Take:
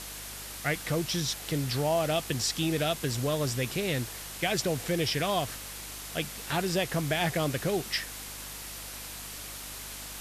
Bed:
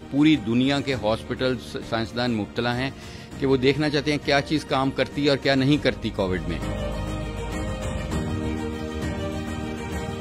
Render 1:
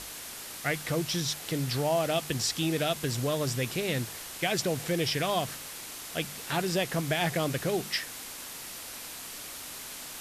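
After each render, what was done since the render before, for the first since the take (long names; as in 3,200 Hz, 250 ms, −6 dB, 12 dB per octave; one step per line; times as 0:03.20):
hum removal 50 Hz, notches 4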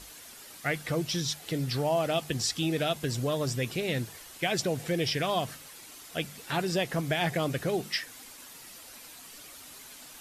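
broadband denoise 9 dB, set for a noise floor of −42 dBFS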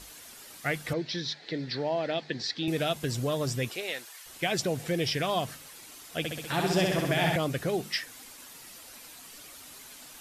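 0:00.93–0:02.68: loudspeaker in its box 210–4,500 Hz, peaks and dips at 730 Hz −4 dB, 1,200 Hz −9 dB, 1,800 Hz +6 dB, 2,900 Hz −7 dB, 4,200 Hz +6 dB
0:03.68–0:04.25: high-pass filter 390 Hz → 1,200 Hz
0:06.18–0:07.36: flutter between parallel walls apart 11.1 metres, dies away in 1.2 s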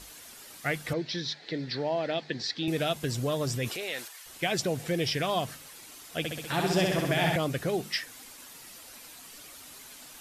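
0:03.48–0:04.08: transient designer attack −4 dB, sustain +5 dB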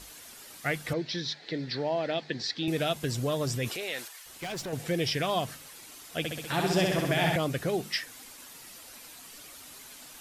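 0:04.19–0:04.73: tube saturation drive 33 dB, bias 0.25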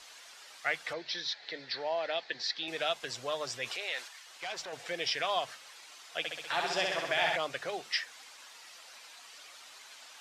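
three-way crossover with the lows and the highs turned down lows −23 dB, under 550 Hz, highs −20 dB, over 7,000 Hz
mains-hum notches 50/100/150/200 Hz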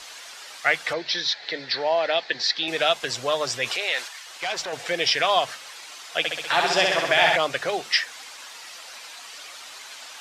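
level +11 dB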